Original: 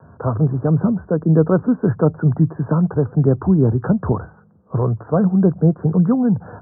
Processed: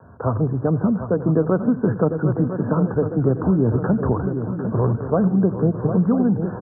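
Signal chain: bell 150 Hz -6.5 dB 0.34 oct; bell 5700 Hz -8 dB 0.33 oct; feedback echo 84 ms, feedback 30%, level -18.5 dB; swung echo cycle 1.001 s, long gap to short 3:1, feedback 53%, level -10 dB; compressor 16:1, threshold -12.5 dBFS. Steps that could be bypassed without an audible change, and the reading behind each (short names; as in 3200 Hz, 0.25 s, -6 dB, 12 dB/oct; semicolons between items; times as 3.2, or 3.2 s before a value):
bell 5700 Hz: input band ends at 1400 Hz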